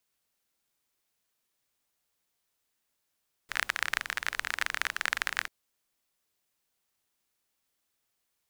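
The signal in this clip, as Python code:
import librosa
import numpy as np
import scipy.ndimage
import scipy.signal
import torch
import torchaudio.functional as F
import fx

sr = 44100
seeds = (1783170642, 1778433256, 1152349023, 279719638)

y = fx.rain(sr, seeds[0], length_s=1.99, drops_per_s=29.0, hz=1700.0, bed_db=-21.0)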